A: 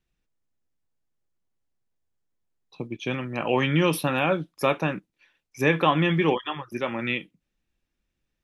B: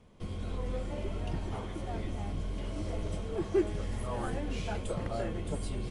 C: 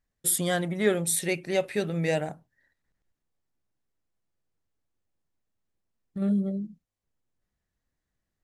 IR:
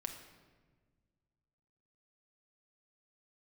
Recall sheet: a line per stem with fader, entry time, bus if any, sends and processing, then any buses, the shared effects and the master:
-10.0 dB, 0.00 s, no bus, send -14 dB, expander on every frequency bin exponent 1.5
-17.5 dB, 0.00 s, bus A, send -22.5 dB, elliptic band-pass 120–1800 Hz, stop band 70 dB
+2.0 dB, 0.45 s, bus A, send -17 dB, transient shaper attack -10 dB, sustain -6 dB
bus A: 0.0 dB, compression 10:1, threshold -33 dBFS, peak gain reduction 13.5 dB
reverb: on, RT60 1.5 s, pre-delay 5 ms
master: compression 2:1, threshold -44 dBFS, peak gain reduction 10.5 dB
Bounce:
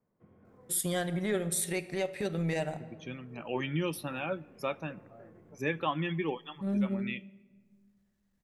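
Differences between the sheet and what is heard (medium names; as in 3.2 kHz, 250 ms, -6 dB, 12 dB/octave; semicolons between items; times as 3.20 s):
stem C: send -17 dB -> -10.5 dB; master: missing compression 2:1, threshold -44 dBFS, peak gain reduction 10.5 dB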